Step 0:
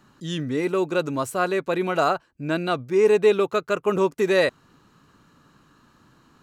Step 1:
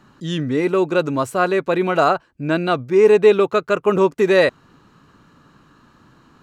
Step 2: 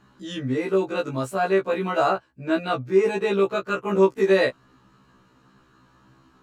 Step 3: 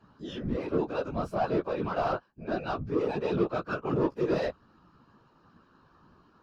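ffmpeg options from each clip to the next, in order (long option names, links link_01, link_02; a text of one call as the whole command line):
ffmpeg -i in.wav -af "highshelf=frequency=5700:gain=-8.5,volume=5.5dB" out.wav
ffmpeg -i in.wav -af "afftfilt=real='re*1.73*eq(mod(b,3),0)':imag='im*1.73*eq(mod(b,3),0)':win_size=2048:overlap=0.75,volume=-3dB" out.wav
ffmpeg -i in.wav -filter_complex "[0:a]asplit=2[link_01][link_02];[link_02]highpass=frequency=720:poles=1,volume=20dB,asoftclip=type=tanh:threshold=-7dB[link_03];[link_01][link_03]amix=inputs=2:normalize=0,lowpass=frequency=1000:poles=1,volume=-6dB,equalizer=frequency=125:width_type=o:width=0.33:gain=9,equalizer=frequency=200:width_type=o:width=0.33:gain=7,equalizer=frequency=2000:width_type=o:width=0.33:gain=-9,equalizer=frequency=5000:width_type=o:width=0.33:gain=9,equalizer=frequency=8000:width_type=o:width=0.33:gain=-8,afftfilt=real='hypot(re,im)*cos(2*PI*random(0))':imag='hypot(re,im)*sin(2*PI*random(1))':win_size=512:overlap=0.75,volume=-6dB" out.wav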